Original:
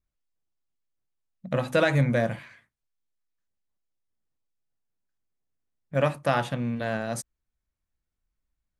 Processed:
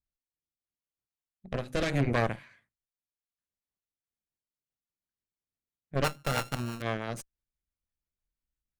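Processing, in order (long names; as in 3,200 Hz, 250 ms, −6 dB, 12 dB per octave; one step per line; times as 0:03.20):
0:06.04–0:06.82: samples sorted by size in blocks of 32 samples
harmonic generator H 6 −9 dB, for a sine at −9 dBFS
rotating-speaker cabinet horn 0.75 Hz, later 6 Hz, at 0:03.62
level −6.5 dB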